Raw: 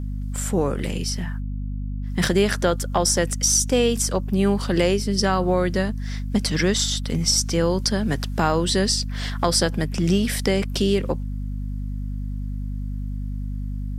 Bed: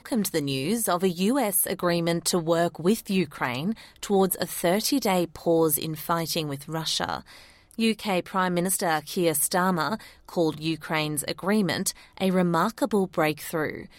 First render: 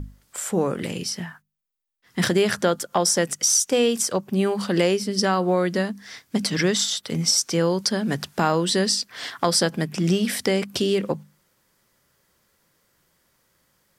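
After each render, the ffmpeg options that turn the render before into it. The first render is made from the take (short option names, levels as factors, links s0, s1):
-af "bandreject=f=50:t=h:w=6,bandreject=f=100:t=h:w=6,bandreject=f=150:t=h:w=6,bandreject=f=200:t=h:w=6,bandreject=f=250:t=h:w=6"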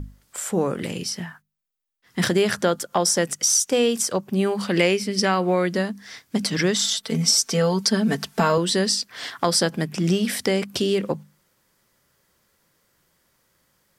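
-filter_complex "[0:a]asettb=1/sr,asplit=3[s0][s1][s2];[s0]atrim=end=4.664[s3];[s1]atrim=start=4.66:end=5.66,asetpts=PTS-STARTPTS,afade=t=in:d=0.004:c=qsin,afade=t=out:st=0.996:d=0.004:c=qsin,equalizer=f=2300:t=o:w=0.55:g=8.5[s4];[s2]atrim=start=5.656[s5];[s3][s4]acrossfade=d=0.004:c1=hsin:c2=qsin[s6];[s6][s5]acrossfade=d=0.004:c1=qsin:c2=hsin,asettb=1/sr,asplit=3[s7][s8][s9];[s7]atrim=end=6.834[s10];[s8]atrim=start=6.83:end=8.58,asetpts=PTS-STARTPTS,afade=t=in:d=0.004:c=qsin,afade=t=out:st=1.746:d=0.004:c=qsin,aecho=1:1:4.5:0.77,atrim=end_sample=77175[s11];[s9]atrim=start=8.576[s12];[s10][s11]acrossfade=d=0.004:c1=hsin:c2=qsin[s13];[s13][s12]acrossfade=d=0.004:c1=qsin:c2=hsin"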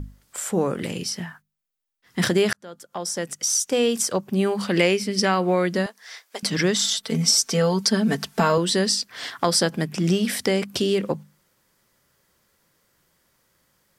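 -filter_complex "[0:a]asettb=1/sr,asplit=3[s0][s1][s2];[s0]atrim=end=5.864[s3];[s1]atrim=start=5.86:end=6.43,asetpts=PTS-STARTPTS,afade=t=in:d=0.004:c=qsin,afade=t=out:st=0.566:d=0.004:c=qsin,highpass=f=490:w=0.5412,highpass=f=490:w=1.3066[s4];[s2]atrim=start=6.426[s5];[s3][s4]acrossfade=d=0.004:c1=hsin:c2=qsin[s6];[s6][s5]acrossfade=d=0.004:c1=qsin:c2=hsin,asplit=2[s7][s8];[s7]atrim=end=2.53,asetpts=PTS-STARTPTS,afade=t=out:st=2.526:d=0.004:c=hsin[s9];[s8]atrim=start=2.53,asetpts=PTS-STARTPTS,afade=t=in:d=1.44[s10];[s9][s10]concat=n=2:v=0:a=1"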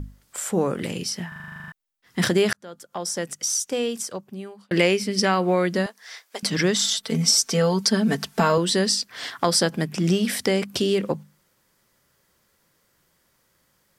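-filter_complex "[0:a]asplit=13[s0][s1][s2][s3][s4][s5][s6][s7][s8][s9][s10][s11][s12];[s0]atrim=end=1.322[s13];[s1]atrim=start=1.278:end=1.322[s14];[s2]atrim=start=1.278:end=1.322[s15];[s3]atrim=start=1.278:end=1.322[s16];[s4]atrim=start=1.278:end=1.322[s17];[s5]atrim=start=1.278:end=1.322[s18];[s6]atrim=start=1.278:end=1.322[s19];[s7]atrim=start=1.278:end=1.322[s20];[s8]atrim=start=1.278:end=1.322[s21];[s9]atrim=start=1.278:end=1.322[s22];[s10]atrim=start=1.278:end=1.322[s23];[s11]atrim=start=1.718:end=4.71,asetpts=PTS-STARTPTS,afade=t=out:st=1.462:d=1.53[s24];[s12]atrim=start=4.71,asetpts=PTS-STARTPTS,afade=t=in:d=0.004:c=hsin[s25];[s13][s14]acrossfade=d=0.004:c1=hsin:c2=hsin[s26];[s26][s15]acrossfade=d=0.004:c1=hsin:c2=hsin[s27];[s27][s16]acrossfade=d=0.004:c1=hsin:c2=hsin[s28];[s28][s17]acrossfade=d=0.004:c1=hsin:c2=hsin[s29];[s29][s18]acrossfade=d=0.004:c1=hsin:c2=hsin[s30];[s30][s19]acrossfade=d=0.004:c1=hsin:c2=hsin[s31];[s31][s20]acrossfade=d=0.004:c1=hsin:c2=hsin[s32];[s32][s21]acrossfade=d=0.004:c1=hsin:c2=hsin[s33];[s33][s22]acrossfade=d=0.004:c1=hsin:c2=hsin[s34];[s34][s23]acrossfade=d=0.004:c1=hsin:c2=hsin[s35];[s24][s25]concat=n=2:v=0:a=1[s36];[s35][s36]acrossfade=d=0.004:c1=hsin:c2=hsin"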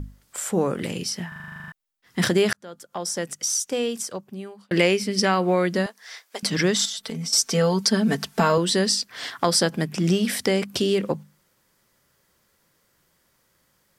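-filter_complex "[0:a]asettb=1/sr,asplit=3[s0][s1][s2];[s0]atrim=end=6.854[s3];[s1]atrim=start=6.85:end=7.33,asetpts=PTS-STARTPTS,afade=t=in:d=0.004:c=qsin,afade=t=out:st=0.476:d=0.004:c=qsin,acompressor=threshold=0.0447:ratio=8:attack=3.2:release=140:knee=1:detection=peak[s4];[s2]atrim=start=7.326[s5];[s3][s4]acrossfade=d=0.004:c1=hsin:c2=qsin[s6];[s6][s5]acrossfade=d=0.004:c1=qsin:c2=hsin"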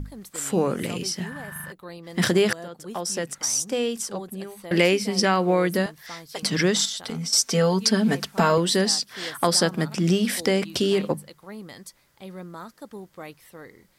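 -filter_complex "[1:a]volume=0.158[s0];[0:a][s0]amix=inputs=2:normalize=0"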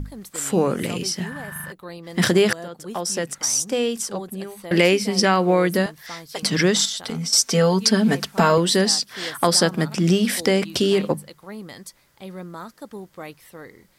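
-af "volume=1.41,alimiter=limit=0.708:level=0:latency=1"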